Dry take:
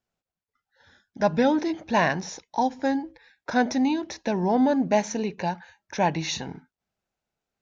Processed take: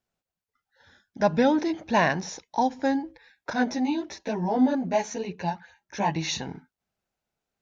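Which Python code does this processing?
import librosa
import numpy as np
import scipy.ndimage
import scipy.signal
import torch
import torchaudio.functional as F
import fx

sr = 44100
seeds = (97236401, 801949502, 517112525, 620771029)

y = fx.chorus_voices(x, sr, voices=2, hz=1.1, base_ms=14, depth_ms=3.0, mix_pct=55, at=(3.53, 6.16))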